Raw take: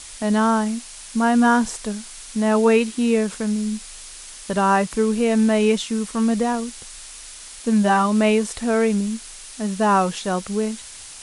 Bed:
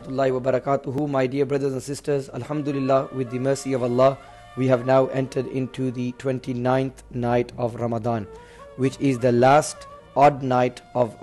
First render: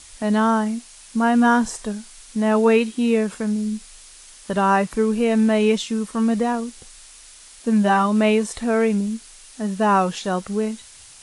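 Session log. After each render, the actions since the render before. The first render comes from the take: noise print and reduce 6 dB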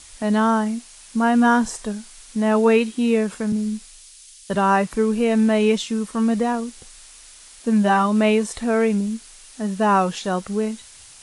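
3.52–4.55 three-band expander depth 70%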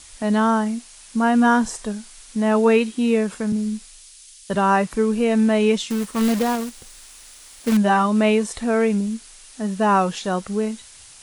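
5.9–7.77 companded quantiser 4-bit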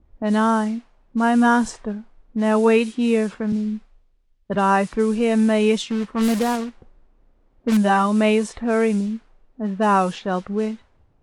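low-pass opened by the level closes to 340 Hz, open at -15 dBFS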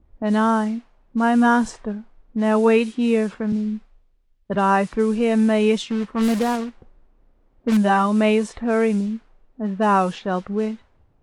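high shelf 5100 Hz -4.5 dB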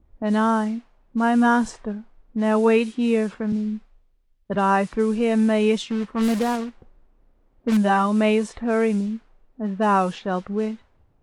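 gain -1.5 dB

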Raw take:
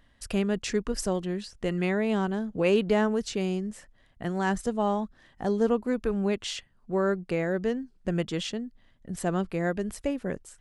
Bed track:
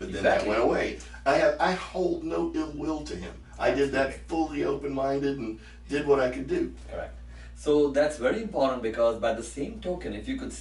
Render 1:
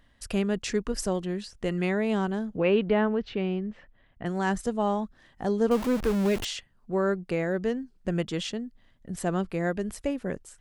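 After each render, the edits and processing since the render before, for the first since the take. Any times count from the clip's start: 2.57–4.26 LPF 3300 Hz 24 dB/oct; 5.71–6.45 zero-crossing step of -28.5 dBFS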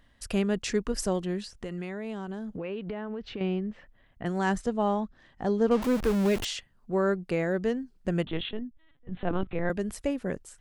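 1.54–3.41 compressor, threshold -32 dBFS; 4.59–5.82 air absorption 68 m; 8.25–9.7 LPC vocoder at 8 kHz pitch kept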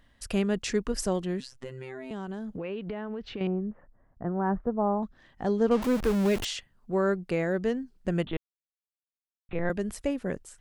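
1.4–2.11 robotiser 130 Hz; 3.47–5.03 LPF 1300 Hz 24 dB/oct; 8.37–9.49 mute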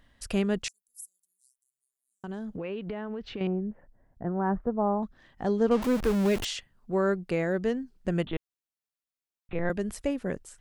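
0.68–2.24 inverse Chebyshev high-pass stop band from 2600 Hz, stop band 70 dB; 3.53–4.27 bell 1200 Hz -12.5 dB 0.27 oct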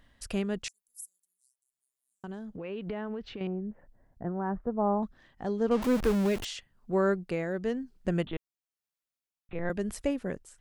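tremolo 1 Hz, depth 43%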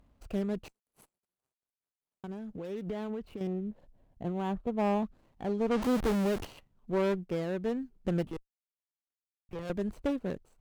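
median filter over 25 samples; one-sided clip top -30 dBFS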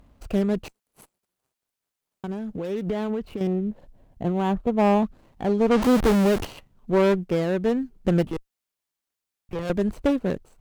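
gain +9.5 dB

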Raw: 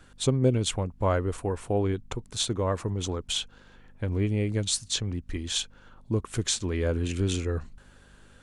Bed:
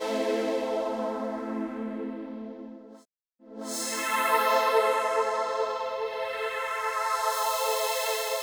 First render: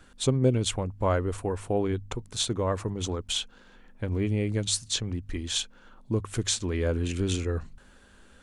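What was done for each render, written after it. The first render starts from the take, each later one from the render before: de-hum 50 Hz, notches 3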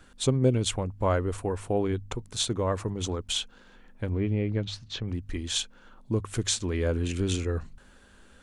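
4.1–5.08 air absorption 250 m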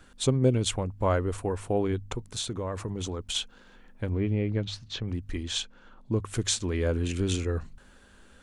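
2.21–3.35 compressor, threshold -28 dBFS; 5.43–6.2 air absorption 54 m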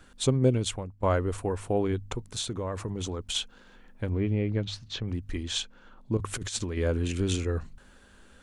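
0.49–1.03 fade out linear, to -13.5 dB; 6.17–6.77 negative-ratio compressor -31 dBFS, ratio -0.5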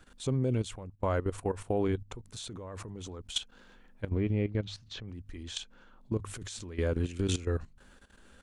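level quantiser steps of 14 dB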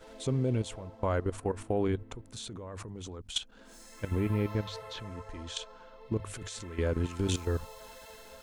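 add bed -22 dB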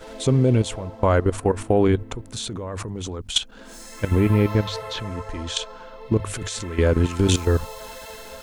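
gain +11.5 dB

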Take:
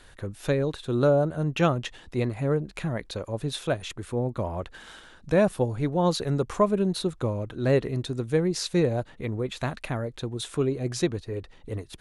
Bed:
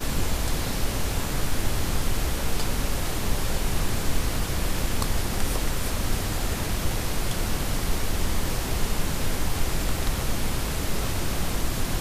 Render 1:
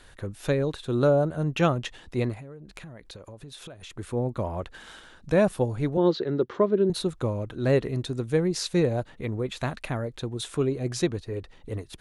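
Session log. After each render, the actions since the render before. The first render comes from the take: 2.34–3.93 compressor 12:1, threshold -39 dBFS; 5.97–6.9 speaker cabinet 190–4000 Hz, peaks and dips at 360 Hz +9 dB, 750 Hz -8 dB, 1100 Hz -5 dB, 2500 Hz -9 dB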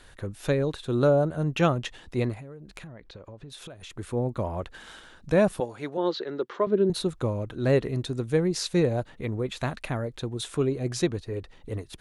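2.87–3.5 air absorption 150 m; 5.6–6.67 weighting filter A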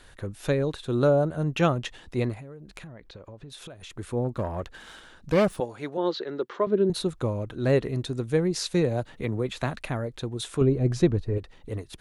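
4.24–5.57 self-modulated delay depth 0.22 ms; 8.71–9.81 three-band squash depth 40%; 10.61–11.38 tilt -2.5 dB/oct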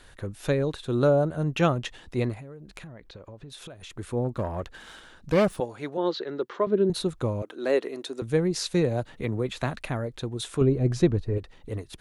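7.42–8.22 HPF 300 Hz 24 dB/oct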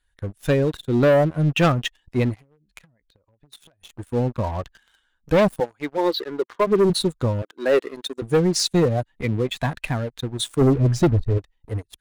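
per-bin expansion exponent 1.5; sample leveller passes 3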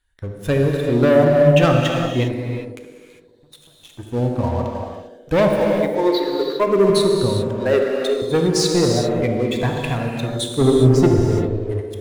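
narrowing echo 74 ms, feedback 81%, band-pass 390 Hz, level -6 dB; non-linear reverb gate 0.43 s flat, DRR 1 dB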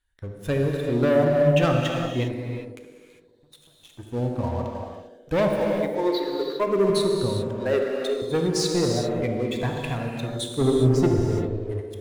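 gain -6 dB

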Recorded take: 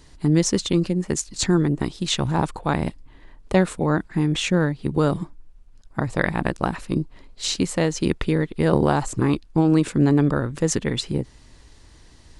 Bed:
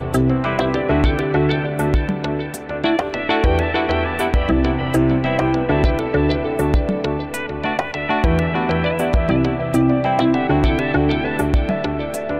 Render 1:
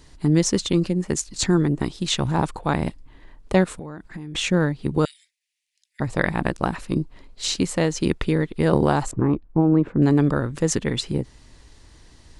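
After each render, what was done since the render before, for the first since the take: 3.64–4.35 compressor 16:1, threshold -30 dBFS; 5.05–6 steep high-pass 1900 Hz 72 dB/oct; 9.11–10.02 LPF 1100 Hz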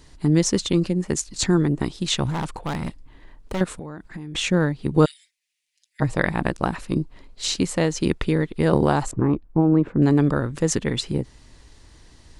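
2.3–3.61 overloaded stage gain 23 dB; 4.95–6.14 comb 6.4 ms, depth 76%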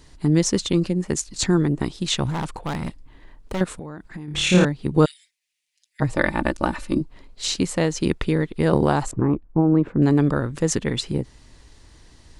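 4.25–4.65 flutter echo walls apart 4.7 m, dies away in 0.8 s; 6.15–7.01 comb 3.4 ms, depth 64%; 9.21–9.75 LPF 2300 Hz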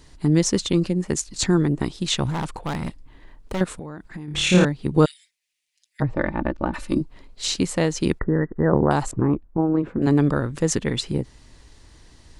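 6.02–6.74 tape spacing loss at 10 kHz 38 dB; 8.19–8.91 brick-wall FIR low-pass 2000 Hz; 9.45–10.07 notch comb 150 Hz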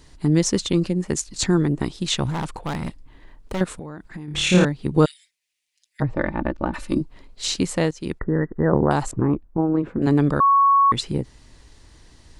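7.91–8.37 fade in, from -17 dB; 10.4–10.92 bleep 1110 Hz -12 dBFS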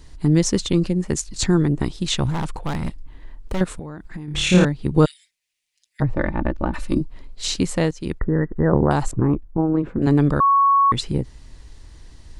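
low shelf 87 Hz +10 dB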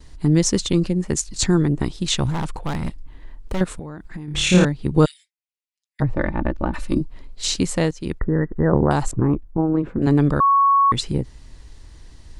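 gate with hold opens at -40 dBFS; dynamic EQ 7300 Hz, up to +3 dB, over -36 dBFS, Q 0.75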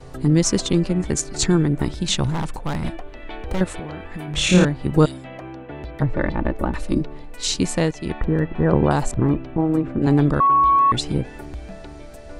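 add bed -18 dB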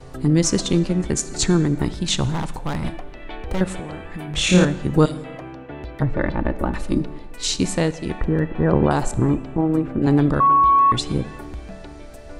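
plate-style reverb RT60 1.3 s, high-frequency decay 0.75×, DRR 14.5 dB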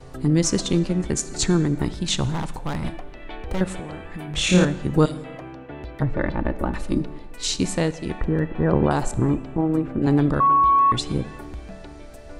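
gain -2 dB

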